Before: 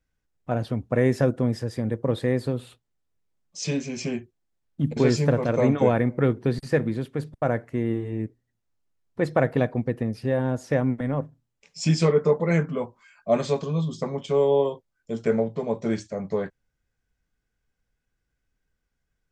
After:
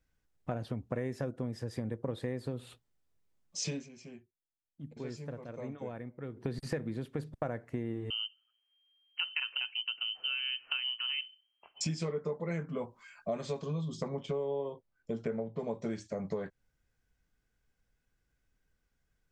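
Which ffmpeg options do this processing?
-filter_complex "[0:a]asettb=1/sr,asplit=3[s0][s1][s2];[s0]atrim=end=8.104[s3];[s1]atrim=start=8.1:end=11.81,asetpts=PTS-STARTPTS,afade=t=in:d=0.004:c=qsin,afade=t=out:st=3.706:d=0.004:c=qsin,lowpass=f=2700:t=q:w=0.5098,lowpass=f=2700:t=q:w=0.6013,lowpass=f=2700:t=q:w=0.9,lowpass=f=2700:t=q:w=2.563,afreqshift=-3200[s4];[s2]atrim=start=11.806[s5];[s3][s4]acrossfade=d=0.004:c1=hsin:c2=qsin[s6];[s6][s5]acrossfade=d=0.004:c1=qsin:c2=hsin,asettb=1/sr,asplit=3[s7][s8][s9];[s7]atrim=end=14.084[s10];[s8]atrim=start=14.08:end=15.59,asetpts=PTS-STARTPTS,afade=t=in:d=0.004:c=qsin,afade=t=out:st=1.506:d=0.004:c=qsin,lowpass=f=2400:p=1[s11];[s9]atrim=start=15.586[s12];[s10][s11]acrossfade=d=0.004:c1=hsin:c2=qsin[s13];[s13][s12]acrossfade=d=0.004:c1=qsin:c2=hsin,asplit=3[s14][s15][s16];[s14]atrim=end=3.89,asetpts=PTS-STARTPTS,afade=t=out:st=3.62:d=0.27:silence=0.0891251[s17];[s15]atrim=start=3.89:end=6.32,asetpts=PTS-STARTPTS,volume=0.0891[s18];[s16]atrim=start=6.32,asetpts=PTS-STARTPTS,afade=t=in:d=0.27:silence=0.0891251[s19];[s17][s18][s19]concat=n=3:v=0:a=1,acompressor=threshold=0.0224:ratio=6"

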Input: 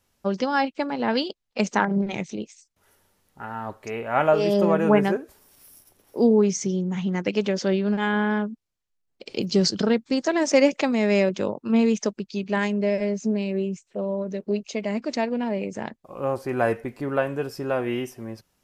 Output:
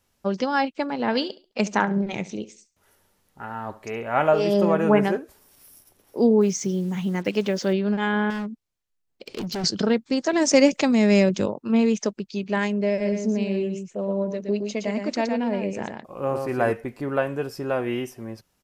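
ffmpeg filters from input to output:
-filter_complex "[0:a]asettb=1/sr,asplit=3[s0][s1][s2];[s0]atrim=end=0.984[s3];[s1]atrim=start=0.98:end=5.19,asetpts=PTS-STARTPTS,afade=t=in:d=0.004:c=qsin,afade=t=out:st=4.206:d=0.004:c=qsin,aecho=1:1:69|138|207:0.133|0.0387|0.0112,atrim=end_sample=185661[s4];[s2]atrim=start=5.186[s5];[s3][s4]acrossfade=d=0.004:c1=hsin:c2=qsin[s6];[s6][s5]acrossfade=d=0.004:c1=qsin:c2=hsin,asettb=1/sr,asplit=3[s7][s8][s9];[s7]atrim=end=6.414[s10];[s8]atrim=start=6.41:end=7.73,asetpts=PTS-STARTPTS,afade=t=in:d=0.004:c=qsin,afade=t=out:st=1.316:d=0.004:c=qsin,acrusher=bits=7:mix=0:aa=0.5[s11];[s9]atrim=start=7.726[s12];[s10][s11]acrossfade=d=0.004:c1=hsin:c2=qsin[s13];[s13][s12]acrossfade=d=0.004:c1=qsin:c2=hsin,asettb=1/sr,asplit=3[s14][s15][s16];[s14]atrim=end=8.304[s17];[s15]atrim=start=8.3:end=9.64,asetpts=PTS-STARTPTS,afade=t=in:d=0.004:c=qsin,afade=t=out:st=1.336:d=0.004:c=qsin,asoftclip=type=hard:threshold=0.0473[s18];[s16]atrim=start=9.636[s19];[s17][s18]acrossfade=d=0.004:c1=hsin:c2=qsin[s20];[s20][s19]acrossfade=d=0.004:c1=qsin:c2=hsin,asettb=1/sr,asplit=3[s21][s22][s23];[s21]atrim=end=10.334[s24];[s22]atrim=start=10.33:end=11.46,asetpts=PTS-STARTPTS,afade=t=in:d=0.004:c=qsin,afade=t=out:st=1.126:d=0.004:c=qsin,bass=f=250:g=8,treble=f=4000:g=7[s25];[s23]atrim=start=11.456[s26];[s24][s25]acrossfade=d=0.004:c1=hsin:c2=qsin[s27];[s27][s26]acrossfade=d=0.004:c1=qsin:c2=hsin,asplit=3[s28][s29][s30];[s28]afade=t=out:st=13.04:d=0.02[s31];[s29]aecho=1:1:117:0.531,afade=t=in:st=13.04:d=0.02,afade=t=out:st=16.7:d=0.02[s32];[s30]afade=t=in:st=16.7:d=0.02[s33];[s31][s32][s33]amix=inputs=3:normalize=0"

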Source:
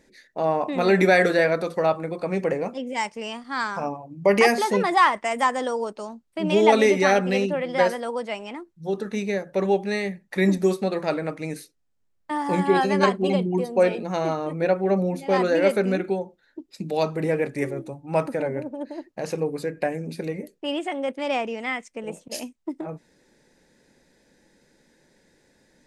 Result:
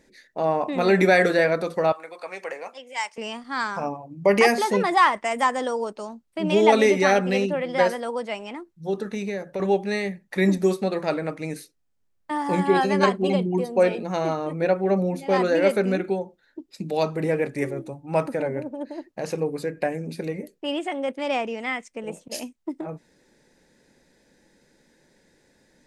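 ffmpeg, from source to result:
-filter_complex "[0:a]asettb=1/sr,asplit=3[s0][s1][s2];[s0]atrim=end=1.924[s3];[s1]atrim=start=1.92:end=3.18,asetpts=PTS-STARTPTS,afade=t=in:d=0.004:c=qsin,afade=t=out:st=1.256:d=0.004:c=qsin,highpass=860[s4];[s2]atrim=start=3.176[s5];[s3][s4]acrossfade=d=0.004:c1=hsin:c2=qsin[s6];[s6][s5]acrossfade=d=0.004:c1=qsin:c2=hsin,asettb=1/sr,asplit=3[s7][s8][s9];[s7]atrim=end=9.084[s10];[s8]atrim=start=9.08:end=9.6,asetpts=PTS-STARTPTS,afade=t=in:d=0.004:c=qsin,afade=t=out:st=0.516:d=0.004:c=qsin,acompressor=threshold=0.0631:ratio=6:attack=3.2:release=140:knee=1:detection=peak[s11];[s9]atrim=start=9.596[s12];[s10][s11]acrossfade=d=0.004:c1=hsin:c2=qsin[s13];[s13][s12]acrossfade=d=0.004:c1=qsin:c2=hsin"

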